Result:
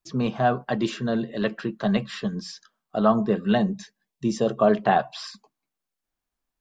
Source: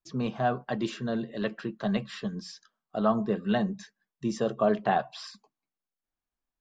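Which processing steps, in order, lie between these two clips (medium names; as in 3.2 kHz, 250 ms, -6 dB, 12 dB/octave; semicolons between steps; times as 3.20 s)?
3.54–4.46 s: peaking EQ 1.4 kHz -7 dB -> -13.5 dB 0.53 oct; trim +5.5 dB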